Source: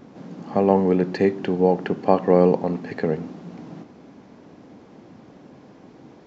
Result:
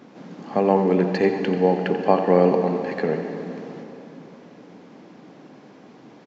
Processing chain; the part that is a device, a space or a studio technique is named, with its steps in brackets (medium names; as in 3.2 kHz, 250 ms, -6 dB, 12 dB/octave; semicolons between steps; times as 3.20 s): PA in a hall (high-pass 160 Hz 12 dB/octave; peaking EQ 2.6 kHz +4 dB 2.5 oct; delay 88 ms -11 dB; reverberation RT60 3.3 s, pre-delay 117 ms, DRR 7.5 dB); trim -1 dB